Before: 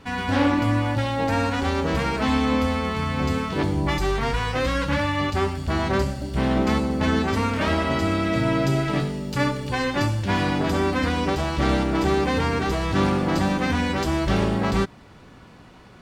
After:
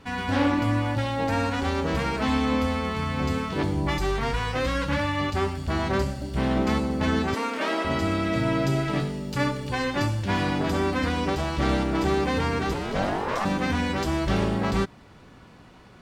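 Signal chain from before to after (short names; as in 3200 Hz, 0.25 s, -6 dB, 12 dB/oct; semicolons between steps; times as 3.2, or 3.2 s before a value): 7.34–7.85 HPF 270 Hz 24 dB/oct; 12.73–13.44 ring modulator 210 Hz -> 1000 Hz; gain -2.5 dB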